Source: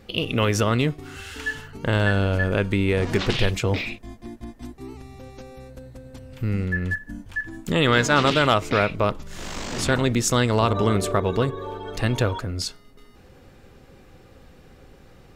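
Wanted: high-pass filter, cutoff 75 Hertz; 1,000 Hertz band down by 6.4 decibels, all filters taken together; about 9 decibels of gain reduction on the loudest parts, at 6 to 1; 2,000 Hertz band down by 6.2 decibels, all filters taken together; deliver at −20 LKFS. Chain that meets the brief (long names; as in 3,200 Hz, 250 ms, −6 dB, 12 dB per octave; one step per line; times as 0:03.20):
high-pass filter 75 Hz
parametric band 1,000 Hz −6.5 dB
parametric band 2,000 Hz −6 dB
downward compressor 6 to 1, threshold −27 dBFS
level +13 dB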